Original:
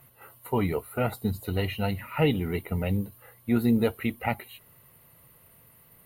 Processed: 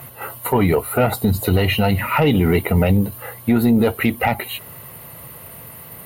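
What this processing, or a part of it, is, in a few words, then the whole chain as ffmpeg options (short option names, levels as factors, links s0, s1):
mastering chain: -af "highpass=57,equalizer=f=730:t=o:w=1:g=3,acompressor=threshold=0.0316:ratio=2,asoftclip=type=tanh:threshold=0.112,alimiter=level_in=17.8:limit=0.891:release=50:level=0:latency=1,volume=0.473"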